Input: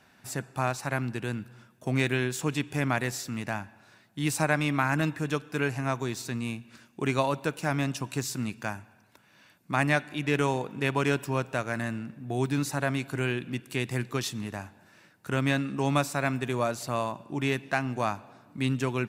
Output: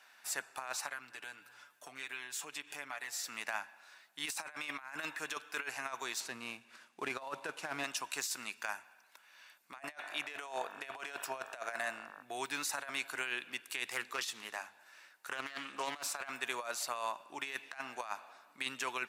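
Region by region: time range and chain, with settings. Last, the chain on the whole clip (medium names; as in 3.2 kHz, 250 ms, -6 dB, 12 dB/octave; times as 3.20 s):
0.86–3.24 s: compression 3:1, threshold -39 dBFS + comb 6.9 ms, depth 57%
6.20–7.84 s: CVSD coder 64 kbps + tilt EQ -2.5 dB/octave
9.79–12.21 s: peaking EQ 670 Hz +12.5 dB 0.26 oct + mains buzz 50 Hz, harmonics 36, -49 dBFS -1 dB/octave
13.89–16.30 s: hum notches 50/100/150/200/250/300 Hz + loudspeaker Doppler distortion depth 0.31 ms
whole clip: high-pass 940 Hz 12 dB/octave; compressor with a negative ratio -36 dBFS, ratio -0.5; trim -2.5 dB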